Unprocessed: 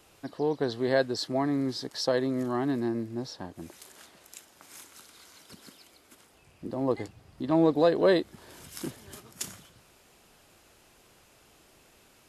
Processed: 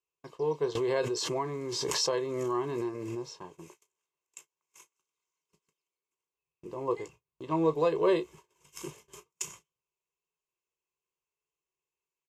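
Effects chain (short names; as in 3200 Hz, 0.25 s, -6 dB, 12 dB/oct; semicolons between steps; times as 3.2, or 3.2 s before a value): ripple EQ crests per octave 0.73, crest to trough 12 dB; gate -44 dBFS, range -33 dB; low shelf 160 Hz -9.5 dB; comb 1.9 ms, depth 43%; early reflections 19 ms -11.5 dB, 33 ms -15.5 dB; 0.75–3.27 backwards sustainer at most 20 dB/s; gain -5 dB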